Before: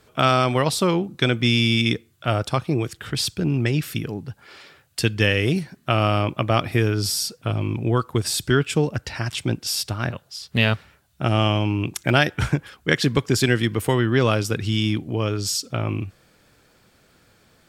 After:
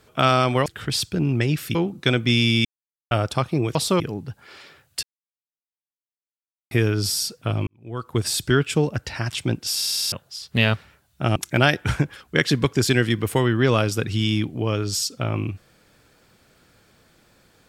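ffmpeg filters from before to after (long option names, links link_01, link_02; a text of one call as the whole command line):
ffmpeg -i in.wav -filter_complex "[0:a]asplit=18[link_01][link_02][link_03][link_04][link_05][link_06][link_07][link_08][link_09][link_10][link_11][link_12][link_13][link_14][link_15][link_16][link_17][link_18];[link_01]atrim=end=0.662[link_19];[link_02]atrim=start=2.908:end=4.002[link_20];[link_03]atrim=start=0.908:end=1.81,asetpts=PTS-STARTPTS,afade=type=out:start_time=0.898:duration=0.004:curve=hsin[link_21];[link_04]atrim=start=1.81:end=2.27,asetpts=PTS-STARTPTS,volume=0[link_22];[link_05]atrim=start=2.27:end=2.912,asetpts=PTS-STARTPTS,afade=type=in:duration=0.004:curve=hsin[link_23];[link_06]atrim=start=0.658:end=0.912[link_24];[link_07]atrim=start=3.998:end=5.03,asetpts=PTS-STARTPTS,afade=type=out:start_time=1.028:duration=0.004:curve=hsin[link_25];[link_08]atrim=start=5.03:end=6.71,asetpts=PTS-STARTPTS,volume=0[link_26];[link_09]atrim=start=6.71:end=7.67,asetpts=PTS-STARTPTS,afade=type=in:duration=0.004:curve=hsin,afade=type=out:start_time=0.956:duration=0.004:curve=hsin[link_27];[link_10]atrim=start=7.67:end=9.822,asetpts=PTS-STARTPTS,afade=type=in:duration=0.52:curve=qua[link_28];[link_11]atrim=start=9.768:end=9.822[link_29];[link_12]atrim=start=9.768:end=9.822[link_30];[link_13]atrim=start=9.768:end=9.822[link_31];[link_14]atrim=start=9.768:end=9.822[link_32];[link_15]atrim=start=9.768:end=9.822[link_33];[link_16]atrim=start=9.768:end=9.822[link_34];[link_17]atrim=start=10.118:end=11.362[link_35];[link_18]atrim=start=11.888[link_36];[link_19][link_20]acrossfade=duration=0.004:curve1=hsin:curve2=hsin[link_37];[link_21][link_22][link_23]concat=n=3:v=0:a=1[link_38];[link_37][link_38]acrossfade=duration=0.004:curve1=hsin:curve2=hsin[link_39];[link_39][link_24]acrossfade=duration=0.004:curve1=hsin:curve2=hsin[link_40];[link_25][link_26][link_27][link_28]concat=n=4:v=0:a=1[link_41];[link_40][link_41]acrossfade=duration=0.004:curve1=hsin:curve2=hsin[link_42];[link_42][link_29]acrossfade=duration=0.004:curve1=hsin:curve2=hsin[link_43];[link_43][link_30]acrossfade=duration=0.004:curve1=hsin:curve2=hsin[link_44];[link_44][link_31]acrossfade=duration=0.004:curve1=hsin:curve2=hsin[link_45];[link_45][link_32]acrossfade=duration=0.004:curve1=hsin:curve2=hsin[link_46];[link_46][link_33]acrossfade=duration=0.004:curve1=hsin:curve2=hsin[link_47];[link_47][link_34]acrossfade=duration=0.004:curve1=hsin:curve2=hsin[link_48];[link_48][link_35]acrossfade=duration=0.004:curve1=hsin:curve2=hsin[link_49];[link_49][link_36]acrossfade=duration=0.004:curve1=hsin:curve2=hsin" out.wav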